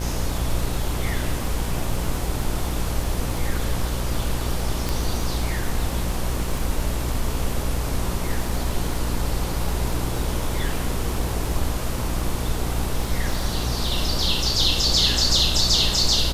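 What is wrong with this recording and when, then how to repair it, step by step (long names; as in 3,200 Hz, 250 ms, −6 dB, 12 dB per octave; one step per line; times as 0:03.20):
mains buzz 60 Hz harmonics 25 −28 dBFS
surface crackle 24 per second −28 dBFS
0:04.89: click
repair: click removal
hum removal 60 Hz, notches 25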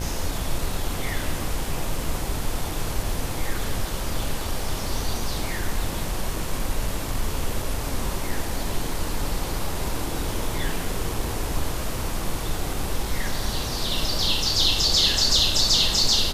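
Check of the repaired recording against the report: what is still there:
0:04.89: click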